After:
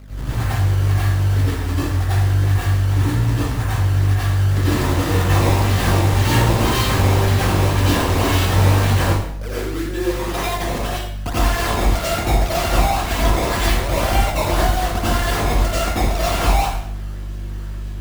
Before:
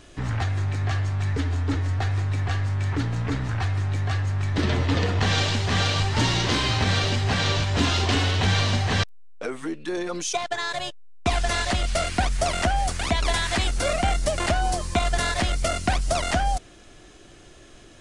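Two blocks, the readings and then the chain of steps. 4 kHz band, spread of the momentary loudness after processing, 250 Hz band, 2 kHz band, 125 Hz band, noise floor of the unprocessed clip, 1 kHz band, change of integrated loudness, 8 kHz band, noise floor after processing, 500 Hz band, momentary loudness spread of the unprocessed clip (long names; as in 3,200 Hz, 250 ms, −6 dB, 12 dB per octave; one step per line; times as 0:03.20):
+0.5 dB, 9 LU, +6.5 dB, +3.0 dB, +7.5 dB, −48 dBFS, +5.5 dB, +6.0 dB, +3.5 dB, −27 dBFS, +6.0 dB, 6 LU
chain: mains hum 50 Hz, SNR 11 dB
sample-and-hold swept by an LFO 17×, swing 160% 1.9 Hz
dense smooth reverb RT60 0.72 s, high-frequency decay 0.85×, pre-delay 75 ms, DRR −9.5 dB
level −4.5 dB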